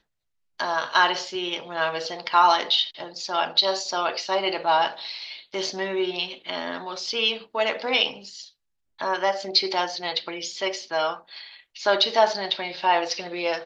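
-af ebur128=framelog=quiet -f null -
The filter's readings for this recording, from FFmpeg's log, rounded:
Integrated loudness:
  I:         -24.2 LUFS
  Threshold: -34.6 LUFS
Loudness range:
  LRA:         4.1 LU
  Threshold: -44.8 LUFS
  LRA low:   -26.6 LUFS
  LRA high:  -22.5 LUFS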